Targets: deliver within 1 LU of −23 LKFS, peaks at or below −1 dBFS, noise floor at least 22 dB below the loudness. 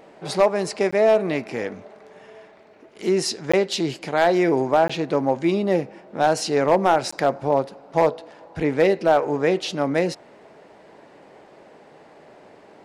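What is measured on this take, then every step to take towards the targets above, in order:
share of clipped samples 0.6%; peaks flattened at −9.0 dBFS; number of dropouts 4; longest dropout 15 ms; integrated loudness −21.5 LKFS; sample peak −9.0 dBFS; target loudness −23.0 LKFS
→ clipped peaks rebuilt −9 dBFS
repair the gap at 0:00.91/0:03.52/0:04.88/0:07.11, 15 ms
level −1.5 dB

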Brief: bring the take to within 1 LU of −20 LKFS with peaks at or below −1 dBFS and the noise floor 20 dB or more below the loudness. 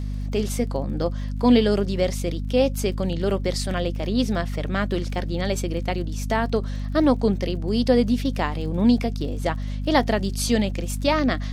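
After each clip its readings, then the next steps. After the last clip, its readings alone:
crackle rate 40 per second; mains hum 50 Hz; hum harmonics up to 250 Hz; level of the hum −25 dBFS; integrated loudness −23.5 LKFS; sample peak −5.0 dBFS; target loudness −20.0 LKFS
→ click removal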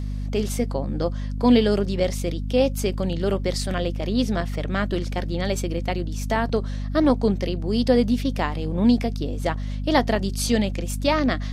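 crackle rate 0.17 per second; mains hum 50 Hz; hum harmonics up to 250 Hz; level of the hum −25 dBFS
→ hum removal 50 Hz, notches 5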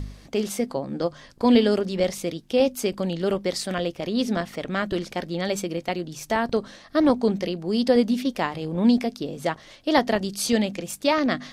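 mains hum none found; integrated loudness −24.5 LKFS; sample peak −6.0 dBFS; target loudness −20.0 LKFS
→ level +4.5 dB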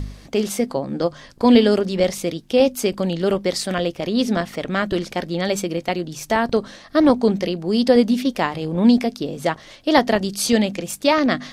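integrated loudness −20.0 LKFS; sample peak −1.5 dBFS; background noise floor −45 dBFS

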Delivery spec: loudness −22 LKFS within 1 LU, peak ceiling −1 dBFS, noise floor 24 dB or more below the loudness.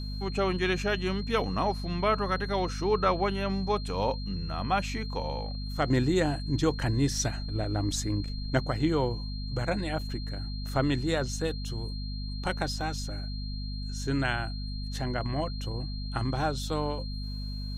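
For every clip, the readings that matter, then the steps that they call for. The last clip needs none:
mains hum 50 Hz; hum harmonics up to 250 Hz; level of the hum −32 dBFS; interfering tone 4,200 Hz; level of the tone −43 dBFS; integrated loudness −30.5 LKFS; sample peak −13.0 dBFS; target loudness −22.0 LKFS
→ hum removal 50 Hz, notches 5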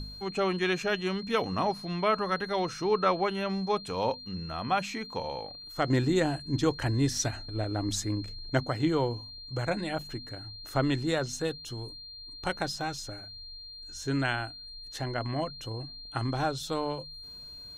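mains hum none found; interfering tone 4,200 Hz; level of the tone −43 dBFS
→ notch filter 4,200 Hz, Q 30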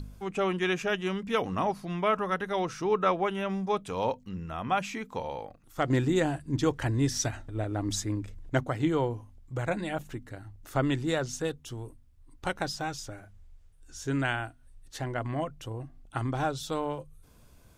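interfering tone none found; integrated loudness −31.0 LKFS; sample peak −13.5 dBFS; target loudness −22.0 LKFS
→ level +9 dB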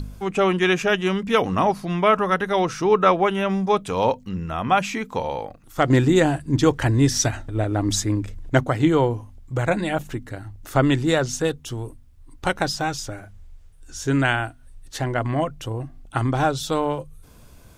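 integrated loudness −22.0 LKFS; sample peak −4.5 dBFS; background noise floor −48 dBFS

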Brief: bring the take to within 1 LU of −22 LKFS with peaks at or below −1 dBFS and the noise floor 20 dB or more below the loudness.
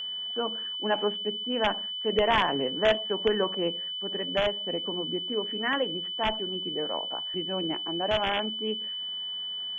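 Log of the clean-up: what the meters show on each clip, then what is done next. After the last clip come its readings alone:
interfering tone 3,000 Hz; level of the tone −32 dBFS; integrated loudness −28.5 LKFS; sample peak −11.5 dBFS; target loudness −22.0 LKFS
→ notch filter 3,000 Hz, Q 30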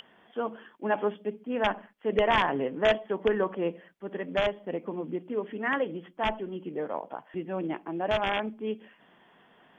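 interfering tone none found; integrated loudness −30.5 LKFS; sample peak −12.5 dBFS; target loudness −22.0 LKFS
→ level +8.5 dB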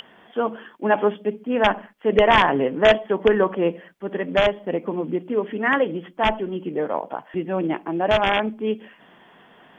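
integrated loudness −22.0 LKFS; sample peak −4.0 dBFS; background noise floor −52 dBFS

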